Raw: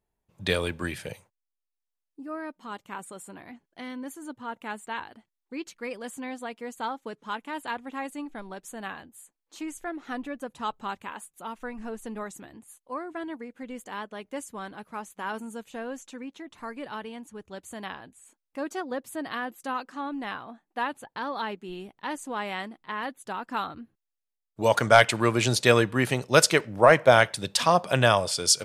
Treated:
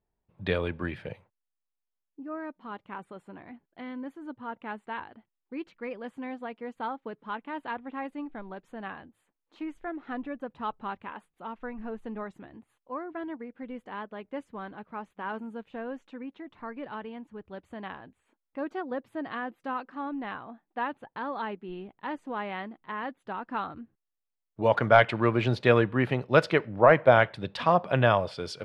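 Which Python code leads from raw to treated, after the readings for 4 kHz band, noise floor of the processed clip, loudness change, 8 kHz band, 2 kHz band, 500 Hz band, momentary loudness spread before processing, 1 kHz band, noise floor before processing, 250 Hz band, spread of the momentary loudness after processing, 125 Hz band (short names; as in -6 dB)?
-10.5 dB, -85 dBFS, -2.5 dB, under -25 dB, -3.5 dB, -1.0 dB, 20 LU, -2.0 dB, -85 dBFS, -0.5 dB, 20 LU, 0.0 dB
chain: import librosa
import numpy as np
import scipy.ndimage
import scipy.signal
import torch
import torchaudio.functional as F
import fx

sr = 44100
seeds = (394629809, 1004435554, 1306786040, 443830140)

y = fx.air_absorb(x, sr, metres=400.0)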